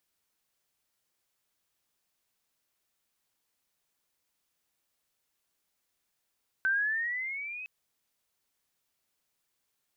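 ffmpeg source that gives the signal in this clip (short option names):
-f lavfi -i "aevalsrc='pow(10,(-23.5-14.5*t/1.01)/20)*sin(2*PI*1530*1.01/(9*log(2)/12)*(exp(9*log(2)/12*t/1.01)-1))':d=1.01:s=44100"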